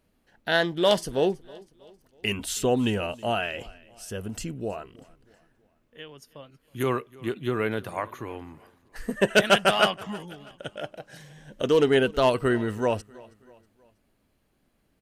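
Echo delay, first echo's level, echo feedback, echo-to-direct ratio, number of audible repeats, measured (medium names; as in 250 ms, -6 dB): 321 ms, -23.0 dB, 47%, -22.0 dB, 2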